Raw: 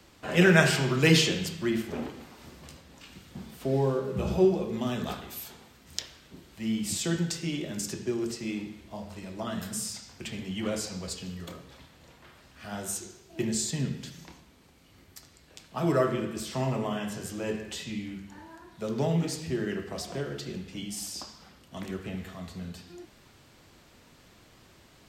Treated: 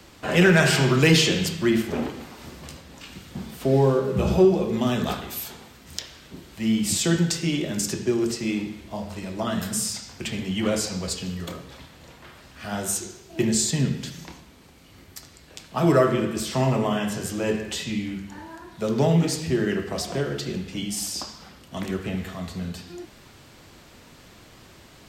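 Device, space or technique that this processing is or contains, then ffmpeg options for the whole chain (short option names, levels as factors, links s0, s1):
soft clipper into limiter: -af "asoftclip=type=tanh:threshold=0.316,alimiter=limit=0.168:level=0:latency=1:release=235,volume=2.37"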